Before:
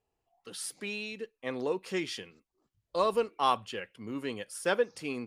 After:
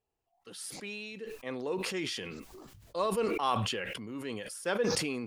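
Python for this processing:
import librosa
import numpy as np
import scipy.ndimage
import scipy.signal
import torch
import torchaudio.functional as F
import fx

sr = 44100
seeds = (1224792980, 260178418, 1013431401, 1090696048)

y = fx.sustainer(x, sr, db_per_s=27.0)
y = F.gain(torch.from_numpy(y), -4.0).numpy()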